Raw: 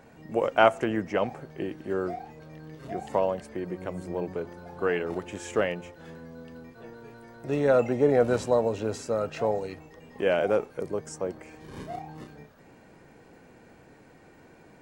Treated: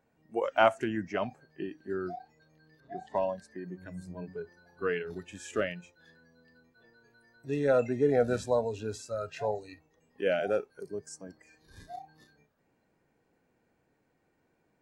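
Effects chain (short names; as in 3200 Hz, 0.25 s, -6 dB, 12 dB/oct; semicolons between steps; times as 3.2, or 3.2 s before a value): spectral noise reduction 16 dB; 2.8–3.51 low-pass opened by the level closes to 1700 Hz, open at -26.5 dBFS; gain -3.5 dB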